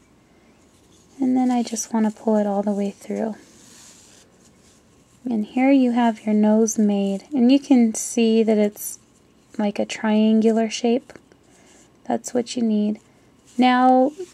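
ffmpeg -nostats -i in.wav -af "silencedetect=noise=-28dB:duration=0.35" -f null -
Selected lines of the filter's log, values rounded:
silence_start: 0.00
silence_end: 1.20 | silence_duration: 1.20
silence_start: 3.32
silence_end: 5.26 | silence_duration: 1.93
silence_start: 8.95
silence_end: 9.55 | silence_duration: 0.60
silence_start: 11.16
silence_end: 12.09 | silence_duration: 0.93
silence_start: 12.95
silence_end: 13.58 | silence_duration: 0.63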